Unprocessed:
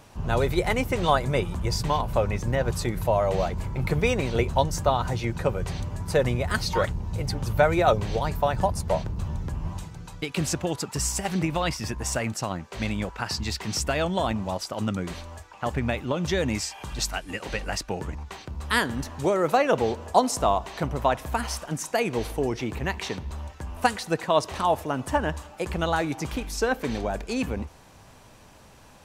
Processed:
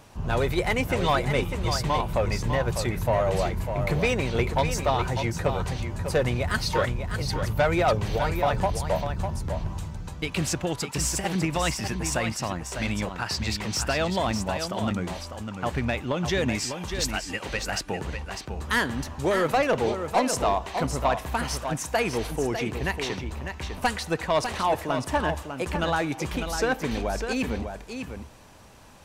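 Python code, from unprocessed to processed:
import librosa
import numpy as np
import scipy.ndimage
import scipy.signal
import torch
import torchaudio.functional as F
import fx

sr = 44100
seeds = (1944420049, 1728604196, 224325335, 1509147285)

y = fx.dynamic_eq(x, sr, hz=2300.0, q=0.78, threshold_db=-39.0, ratio=4.0, max_db=3)
y = 10.0 ** (-15.0 / 20.0) * np.tanh(y / 10.0 ** (-15.0 / 20.0))
y = y + 10.0 ** (-7.5 / 20.0) * np.pad(y, (int(600 * sr / 1000.0), 0))[:len(y)]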